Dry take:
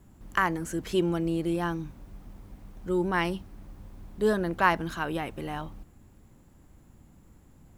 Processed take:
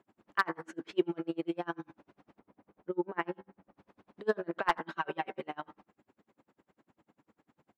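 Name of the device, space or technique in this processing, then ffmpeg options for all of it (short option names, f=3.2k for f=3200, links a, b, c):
helicopter radio: -filter_complex "[0:a]asettb=1/sr,asplit=3[a][b][c];[a]atrim=end=2.394[d];[b]atrim=start=2.39:end=3.76,asetpts=PTS-STARTPTS,afade=t=in:d=0.004:c=qsin,afade=t=out:st=1.366:d=0.004:c=qsin,lowpass=f=1.2k:p=1[e];[c]atrim=start=3.756[f];[d][e]acrossfade=d=0.004:c1=hsin:c2=qsin[g];[g][f]acrossfade=d=0.004:c1=qsin:c2=hsin,bandreject=f=64.14:t=h:w=4,bandreject=f=128.28:t=h:w=4,bandreject=f=192.42:t=h:w=4,bandreject=f=256.56:t=h:w=4,bandreject=f=320.7:t=h:w=4,bandreject=f=384.84:t=h:w=4,bandreject=f=448.98:t=h:w=4,bandreject=f=513.12:t=h:w=4,bandreject=f=577.26:t=h:w=4,bandreject=f=641.4:t=h:w=4,bandreject=f=705.54:t=h:w=4,bandreject=f=769.68:t=h:w=4,bandreject=f=833.82:t=h:w=4,bandreject=f=897.96:t=h:w=4,bandreject=f=962.1:t=h:w=4,bandreject=f=1.02624k:t=h:w=4,bandreject=f=1.09038k:t=h:w=4,bandreject=f=1.15452k:t=h:w=4,bandreject=f=1.21866k:t=h:w=4,bandreject=f=1.2828k:t=h:w=4,bandreject=f=1.34694k:t=h:w=4,bandreject=f=1.41108k:t=h:w=4,bandreject=f=1.47522k:t=h:w=4,bandreject=f=1.53936k:t=h:w=4,bandreject=f=1.6035k:t=h:w=4,bandreject=f=1.66764k:t=h:w=4,bandreject=f=1.73178k:t=h:w=4,bandreject=f=1.79592k:t=h:w=4,bandreject=f=1.86006k:t=h:w=4,bandreject=f=1.9242k:t=h:w=4,bandreject=f=1.98834k:t=h:w=4,bandreject=f=2.05248k:t=h:w=4,bandreject=f=2.11662k:t=h:w=4,bandreject=f=2.18076k:t=h:w=4,asettb=1/sr,asplit=3[h][i][j];[h]atrim=end=4.884[k];[i]atrim=start=4.88:end=5.42,asetpts=PTS-STARTPTS,afade=t=in:d=0.004:c=qsin,afade=t=out:st=0.536:d=0.004:c=qsin,aecho=1:1:5.2:0.78,atrim=end_sample=23814[l];[j]atrim=start=5.416[m];[k][l]acrossfade=d=0.004:c1=hsin:c2=qsin[n];[n][m]acrossfade=d=0.004:c1=qsin:c2=hsin,highpass=340,lowpass=2.8k,aeval=exprs='val(0)*pow(10,-35*(0.5-0.5*cos(2*PI*10*n/s))/20)':c=same,asoftclip=type=hard:threshold=-18.5dB,asplit=2[o][p];[p]adelay=87.46,volume=-26dB,highshelf=f=4k:g=-1.97[q];[o][q]amix=inputs=2:normalize=0,volume=3dB"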